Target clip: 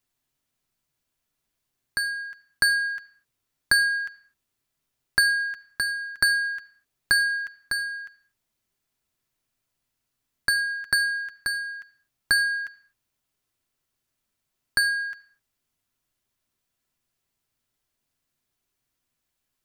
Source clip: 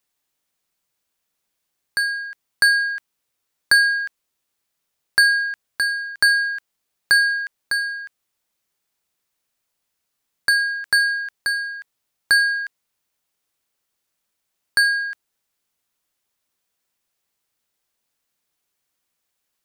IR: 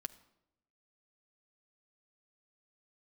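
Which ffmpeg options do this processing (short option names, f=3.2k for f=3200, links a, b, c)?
-filter_complex "[0:a]bass=f=250:g=10,treble=f=4k:g=-1[a];[1:a]atrim=start_sample=2205,afade=t=out:st=0.31:d=0.01,atrim=end_sample=14112[b];[a][b]afir=irnorm=-1:irlink=0"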